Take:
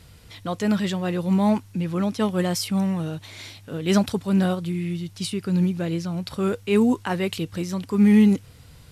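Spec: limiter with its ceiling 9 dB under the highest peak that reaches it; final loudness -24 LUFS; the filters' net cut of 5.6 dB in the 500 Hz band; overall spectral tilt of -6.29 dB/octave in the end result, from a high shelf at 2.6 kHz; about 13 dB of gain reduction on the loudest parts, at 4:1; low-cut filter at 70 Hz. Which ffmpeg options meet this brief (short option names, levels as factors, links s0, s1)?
-af "highpass=70,equalizer=f=500:t=o:g=-7.5,highshelf=f=2600:g=-5.5,acompressor=threshold=0.0316:ratio=4,volume=3.98,alimiter=limit=0.15:level=0:latency=1"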